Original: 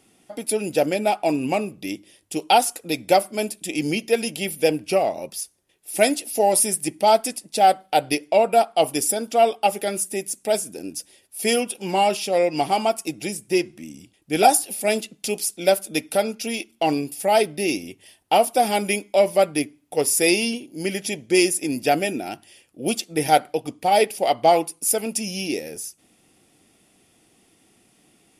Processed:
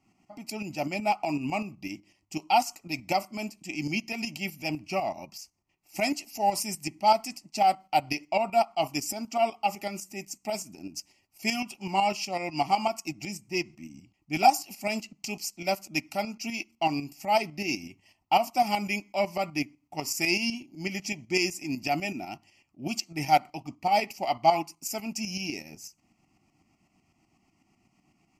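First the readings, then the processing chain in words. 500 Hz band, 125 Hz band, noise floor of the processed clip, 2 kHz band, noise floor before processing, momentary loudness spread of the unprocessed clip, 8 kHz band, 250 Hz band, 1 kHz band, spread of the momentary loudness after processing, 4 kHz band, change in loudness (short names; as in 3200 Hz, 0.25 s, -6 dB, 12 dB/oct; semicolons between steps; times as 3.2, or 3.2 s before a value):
-11.5 dB, -4.0 dB, -72 dBFS, -4.5 dB, -61 dBFS, 12 LU, -12.0 dB, -7.0 dB, -5.0 dB, 14 LU, -6.0 dB, -7.5 dB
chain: fixed phaser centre 2400 Hz, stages 8; tremolo saw up 8 Hz, depth 60%; mismatched tape noise reduction decoder only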